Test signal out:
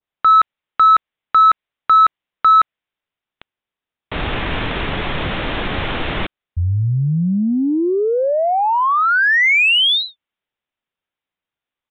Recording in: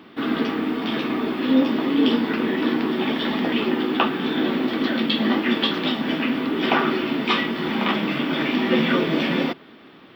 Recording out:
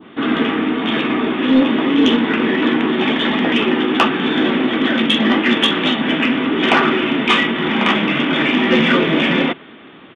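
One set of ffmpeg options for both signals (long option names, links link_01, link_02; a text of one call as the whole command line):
ffmpeg -i in.wav -af "aresample=8000,aresample=44100,adynamicequalizer=threshold=0.0224:dfrequency=2300:dqfactor=0.81:tfrequency=2300:tqfactor=0.81:attack=5:release=100:ratio=0.375:range=2:mode=boostabove:tftype=bell,acontrast=80,volume=-1dB" out.wav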